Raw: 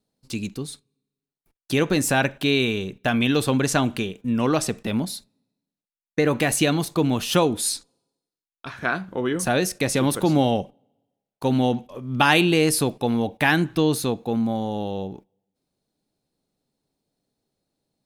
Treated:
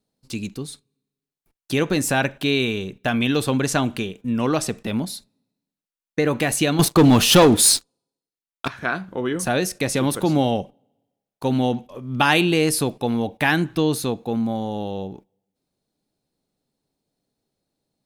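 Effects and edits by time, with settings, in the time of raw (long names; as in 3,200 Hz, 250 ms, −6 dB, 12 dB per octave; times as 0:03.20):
0:06.79–0:08.68: leveller curve on the samples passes 3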